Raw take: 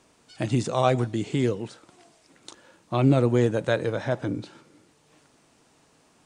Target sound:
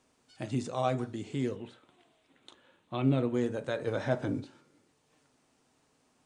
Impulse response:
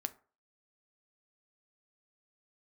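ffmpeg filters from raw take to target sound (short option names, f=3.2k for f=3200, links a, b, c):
-filter_complex "[0:a]asettb=1/sr,asplit=3[a][b][c];[a]atrim=end=1.564[d];[b]atrim=start=1.56:end=3.34,asetpts=PTS-STARTPTS,afade=t=in:d=0.004:c=qsin,afade=t=out:st=1.776:d=0.004:c=qsin,highshelf=f=4.2k:t=q:w=3:g=-6[e];[c]atrim=start=3.336[f];[d][e]acrossfade=d=0.004:c1=hsin:c2=qsin[g];[g][f]acrossfade=d=0.004:c1=qsin:c2=hsin,asplit=3[h][i][j];[h]afade=t=out:st=3.86:d=0.02[k];[i]acontrast=53,afade=t=in:st=3.86:d=0.02,afade=t=out:st=4.39:d=0.02[l];[j]afade=t=in:st=4.39:d=0.02[m];[k][l][m]amix=inputs=3:normalize=0[n];[1:a]atrim=start_sample=2205[o];[n][o]afir=irnorm=-1:irlink=0,volume=-9dB"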